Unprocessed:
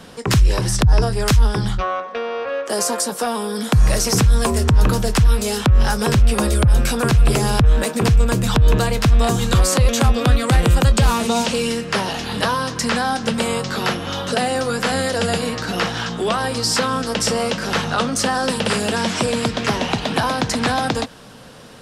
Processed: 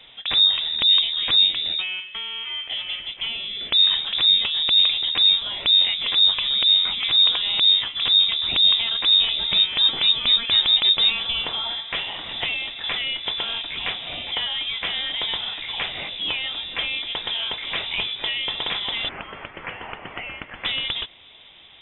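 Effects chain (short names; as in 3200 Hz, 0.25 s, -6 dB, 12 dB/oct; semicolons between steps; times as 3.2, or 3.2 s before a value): 19.09–20.65 HPF 1500 Hz 12 dB/oct; inverted band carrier 3700 Hz; gain -6.5 dB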